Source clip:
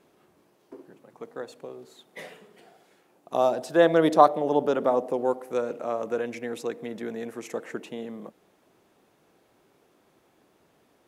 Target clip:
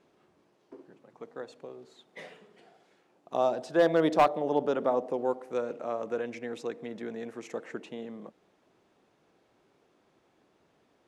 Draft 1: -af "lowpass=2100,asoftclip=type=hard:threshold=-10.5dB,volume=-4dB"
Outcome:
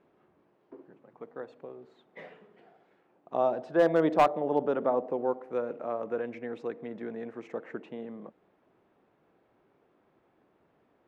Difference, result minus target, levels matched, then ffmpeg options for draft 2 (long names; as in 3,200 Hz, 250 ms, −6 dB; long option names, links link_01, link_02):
8,000 Hz band −7.5 dB
-af "lowpass=6700,asoftclip=type=hard:threshold=-10.5dB,volume=-4dB"